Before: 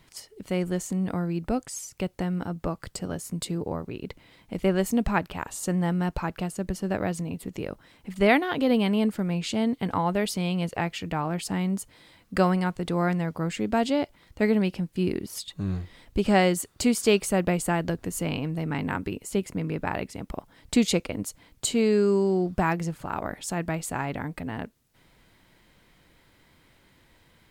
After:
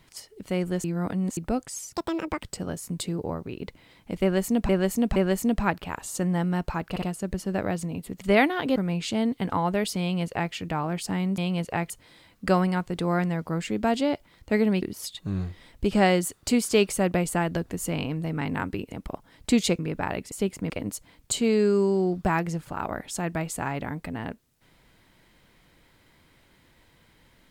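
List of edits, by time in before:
0:00.84–0:01.37: reverse
0:01.93–0:02.86: play speed 183%
0:04.64–0:05.11: repeat, 3 plays
0:06.38: stutter 0.06 s, 3 plays
0:07.57–0:08.13: remove
0:08.68–0:09.17: remove
0:10.42–0:10.94: duplicate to 0:11.79
0:14.71–0:15.15: remove
0:19.25–0:19.63: swap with 0:20.16–0:21.03

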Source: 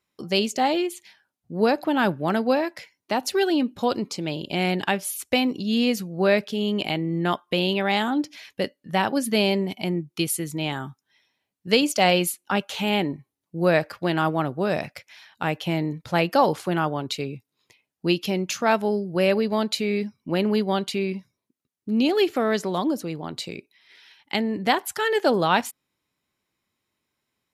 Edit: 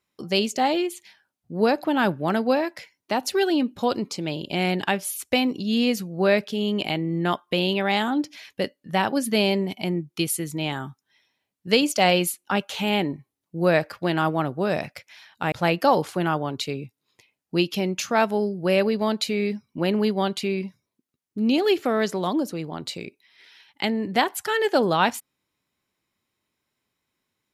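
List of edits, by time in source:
0:15.52–0:16.03: remove

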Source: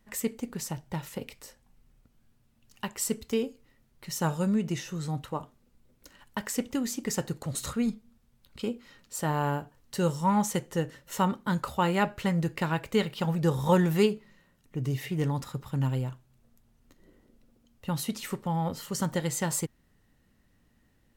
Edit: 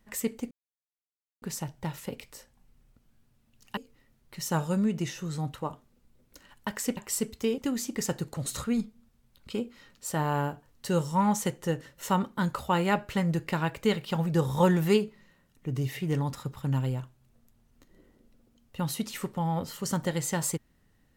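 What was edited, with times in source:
0:00.51: splice in silence 0.91 s
0:02.86–0:03.47: move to 0:06.67

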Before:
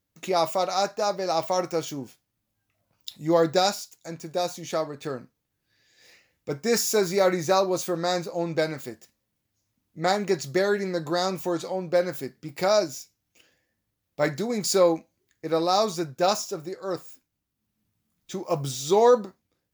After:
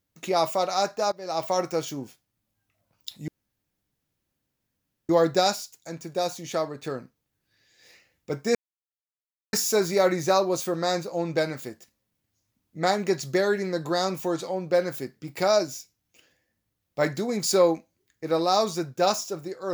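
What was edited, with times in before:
0:01.12–0:01.49: fade in, from −19 dB
0:03.28: splice in room tone 1.81 s
0:06.74: splice in silence 0.98 s

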